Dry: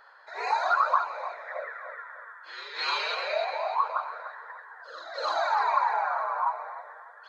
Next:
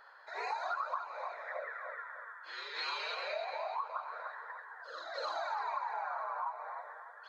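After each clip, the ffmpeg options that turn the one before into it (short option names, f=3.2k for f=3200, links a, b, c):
-af "acompressor=threshold=-34dB:ratio=3,volume=-3dB"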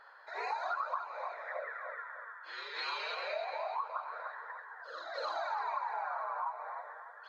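-af "highshelf=f=6.5k:g=-8,volume=1dB"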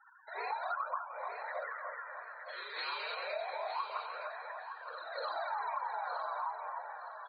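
-af "afftfilt=real='re*gte(hypot(re,im),0.00501)':imag='im*gte(hypot(re,im),0.00501)':win_size=1024:overlap=0.75,aecho=1:1:915|1830|2745:0.355|0.0603|0.0103,volume=-1dB"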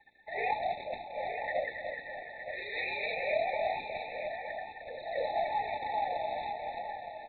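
-af "aresample=8000,acrusher=bits=3:mode=log:mix=0:aa=0.000001,aresample=44100,afftfilt=real='re*eq(mod(floor(b*sr/1024/880),2),0)':imag='im*eq(mod(floor(b*sr/1024/880),2),0)':win_size=1024:overlap=0.75,volume=8.5dB"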